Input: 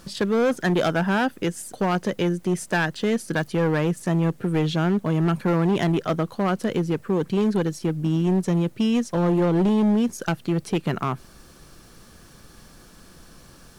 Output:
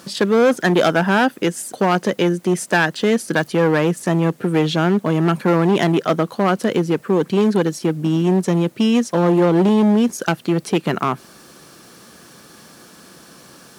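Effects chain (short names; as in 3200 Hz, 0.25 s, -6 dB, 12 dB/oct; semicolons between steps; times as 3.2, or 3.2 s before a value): HPF 190 Hz 12 dB/oct; gain +7 dB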